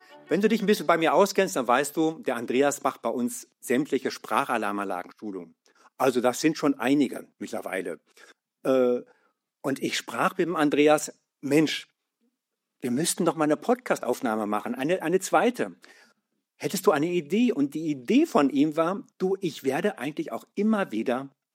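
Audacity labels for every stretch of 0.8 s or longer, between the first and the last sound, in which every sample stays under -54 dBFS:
11.850000	12.810000	silence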